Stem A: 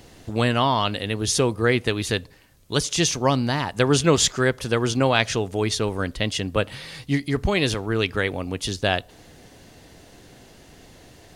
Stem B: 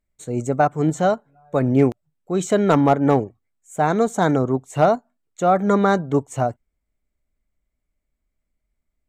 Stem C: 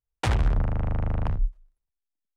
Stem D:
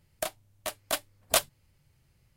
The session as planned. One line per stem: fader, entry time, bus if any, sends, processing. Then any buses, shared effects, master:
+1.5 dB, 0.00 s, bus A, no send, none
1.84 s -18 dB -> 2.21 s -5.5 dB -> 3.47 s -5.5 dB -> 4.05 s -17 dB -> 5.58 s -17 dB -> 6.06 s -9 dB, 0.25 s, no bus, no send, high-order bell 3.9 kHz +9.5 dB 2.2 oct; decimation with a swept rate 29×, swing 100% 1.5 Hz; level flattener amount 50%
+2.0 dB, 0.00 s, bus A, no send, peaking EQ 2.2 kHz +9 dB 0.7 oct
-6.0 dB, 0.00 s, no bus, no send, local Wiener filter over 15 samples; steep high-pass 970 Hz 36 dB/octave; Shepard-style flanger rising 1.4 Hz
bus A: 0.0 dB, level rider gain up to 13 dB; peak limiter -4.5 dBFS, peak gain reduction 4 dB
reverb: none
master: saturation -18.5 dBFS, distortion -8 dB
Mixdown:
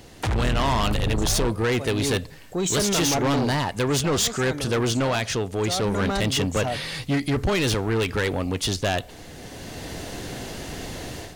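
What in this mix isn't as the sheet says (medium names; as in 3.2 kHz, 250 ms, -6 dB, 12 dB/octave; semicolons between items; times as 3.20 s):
stem B: missing decimation with a swept rate 29×, swing 100% 1.5 Hz; stem C: missing peaking EQ 2.2 kHz +9 dB 0.7 oct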